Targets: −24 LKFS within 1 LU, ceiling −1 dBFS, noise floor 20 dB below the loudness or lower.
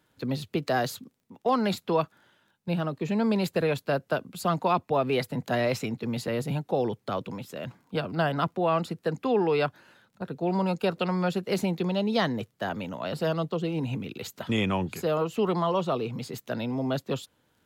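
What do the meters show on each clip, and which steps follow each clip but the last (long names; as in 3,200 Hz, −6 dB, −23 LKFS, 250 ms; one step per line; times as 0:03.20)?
crackle rate 15 per second; integrated loudness −28.5 LKFS; sample peak −12.0 dBFS; target loudness −24.0 LKFS
→ click removal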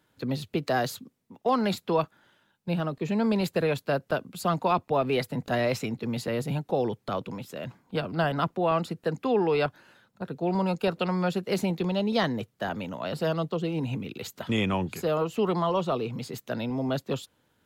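crackle rate 0.057 per second; integrated loudness −28.5 LKFS; sample peak −12.0 dBFS; target loudness −24.0 LKFS
→ level +4.5 dB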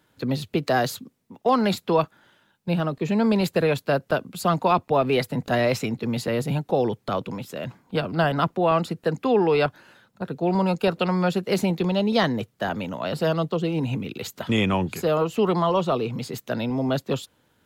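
integrated loudness −24.0 LKFS; sample peak −7.5 dBFS; background noise floor −67 dBFS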